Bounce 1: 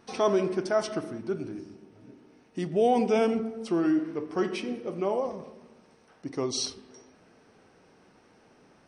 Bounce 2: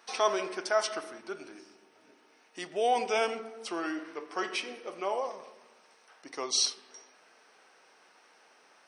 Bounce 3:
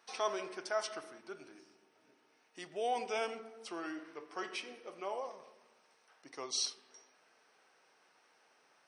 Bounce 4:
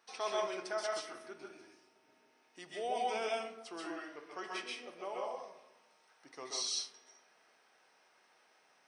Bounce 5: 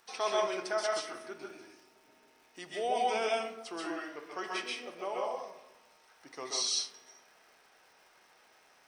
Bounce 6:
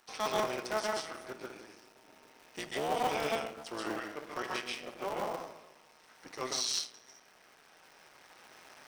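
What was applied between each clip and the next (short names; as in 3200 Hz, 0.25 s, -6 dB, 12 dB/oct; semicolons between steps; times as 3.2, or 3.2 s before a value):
Bessel high-pass 1000 Hz, order 2; gain +4.5 dB
bell 140 Hz +10.5 dB 0.26 oct; gain -8 dB
reverb, pre-delay 0.123 s, DRR -2 dB; gain -3.5 dB
crackle 420/s -62 dBFS; gain +5 dB
cycle switcher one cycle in 3, muted; recorder AGC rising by 5.1 dB/s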